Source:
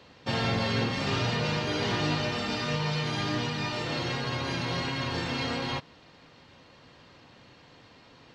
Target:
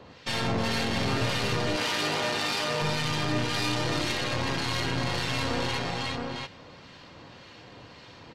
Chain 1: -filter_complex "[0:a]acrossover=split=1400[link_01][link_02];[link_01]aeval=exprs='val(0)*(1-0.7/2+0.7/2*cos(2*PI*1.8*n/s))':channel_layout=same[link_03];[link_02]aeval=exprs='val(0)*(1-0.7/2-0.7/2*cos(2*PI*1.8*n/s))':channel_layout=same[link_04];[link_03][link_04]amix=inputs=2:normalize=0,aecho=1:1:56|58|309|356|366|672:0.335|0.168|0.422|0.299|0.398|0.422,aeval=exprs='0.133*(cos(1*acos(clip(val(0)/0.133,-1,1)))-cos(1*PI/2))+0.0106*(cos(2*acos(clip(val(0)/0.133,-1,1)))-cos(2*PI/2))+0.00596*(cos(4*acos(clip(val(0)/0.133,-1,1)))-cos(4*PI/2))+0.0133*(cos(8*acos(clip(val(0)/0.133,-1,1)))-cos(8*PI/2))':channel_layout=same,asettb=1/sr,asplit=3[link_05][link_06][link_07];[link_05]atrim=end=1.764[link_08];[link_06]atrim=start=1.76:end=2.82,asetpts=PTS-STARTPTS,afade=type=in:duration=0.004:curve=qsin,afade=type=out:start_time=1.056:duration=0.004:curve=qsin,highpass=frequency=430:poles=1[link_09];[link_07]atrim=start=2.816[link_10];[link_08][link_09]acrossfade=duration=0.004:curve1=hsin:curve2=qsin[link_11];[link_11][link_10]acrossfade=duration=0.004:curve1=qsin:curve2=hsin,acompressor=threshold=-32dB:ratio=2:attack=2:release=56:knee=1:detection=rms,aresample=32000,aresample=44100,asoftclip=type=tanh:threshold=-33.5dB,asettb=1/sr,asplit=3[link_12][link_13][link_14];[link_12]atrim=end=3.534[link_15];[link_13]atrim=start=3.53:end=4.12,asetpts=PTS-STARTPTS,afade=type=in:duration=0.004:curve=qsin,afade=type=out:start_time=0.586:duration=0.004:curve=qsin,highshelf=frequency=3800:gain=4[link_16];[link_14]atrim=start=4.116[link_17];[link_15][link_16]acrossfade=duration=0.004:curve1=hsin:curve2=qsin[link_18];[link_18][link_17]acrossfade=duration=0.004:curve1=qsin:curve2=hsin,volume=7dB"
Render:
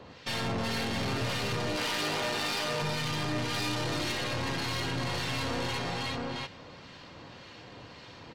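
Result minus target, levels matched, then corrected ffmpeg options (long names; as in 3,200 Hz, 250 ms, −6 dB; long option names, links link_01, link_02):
soft clipping: distortion +16 dB
-filter_complex "[0:a]acrossover=split=1400[link_01][link_02];[link_01]aeval=exprs='val(0)*(1-0.7/2+0.7/2*cos(2*PI*1.8*n/s))':channel_layout=same[link_03];[link_02]aeval=exprs='val(0)*(1-0.7/2-0.7/2*cos(2*PI*1.8*n/s))':channel_layout=same[link_04];[link_03][link_04]amix=inputs=2:normalize=0,aecho=1:1:56|58|309|356|366|672:0.335|0.168|0.422|0.299|0.398|0.422,aeval=exprs='0.133*(cos(1*acos(clip(val(0)/0.133,-1,1)))-cos(1*PI/2))+0.0106*(cos(2*acos(clip(val(0)/0.133,-1,1)))-cos(2*PI/2))+0.00596*(cos(4*acos(clip(val(0)/0.133,-1,1)))-cos(4*PI/2))+0.0133*(cos(8*acos(clip(val(0)/0.133,-1,1)))-cos(8*PI/2))':channel_layout=same,asettb=1/sr,asplit=3[link_05][link_06][link_07];[link_05]atrim=end=1.764[link_08];[link_06]atrim=start=1.76:end=2.82,asetpts=PTS-STARTPTS,afade=type=in:duration=0.004:curve=qsin,afade=type=out:start_time=1.056:duration=0.004:curve=qsin,highpass=frequency=430:poles=1[link_09];[link_07]atrim=start=2.816[link_10];[link_08][link_09]acrossfade=duration=0.004:curve1=hsin:curve2=qsin[link_11];[link_11][link_10]acrossfade=duration=0.004:curve1=qsin:curve2=hsin,acompressor=threshold=-32dB:ratio=2:attack=2:release=56:knee=1:detection=rms,aresample=32000,aresample=44100,asoftclip=type=tanh:threshold=-22.5dB,asettb=1/sr,asplit=3[link_12][link_13][link_14];[link_12]atrim=end=3.534[link_15];[link_13]atrim=start=3.53:end=4.12,asetpts=PTS-STARTPTS,afade=type=in:duration=0.004:curve=qsin,afade=type=out:start_time=0.586:duration=0.004:curve=qsin,highshelf=frequency=3800:gain=4[link_16];[link_14]atrim=start=4.116[link_17];[link_15][link_16]acrossfade=duration=0.004:curve1=hsin:curve2=qsin[link_18];[link_18][link_17]acrossfade=duration=0.004:curve1=qsin:curve2=hsin,volume=7dB"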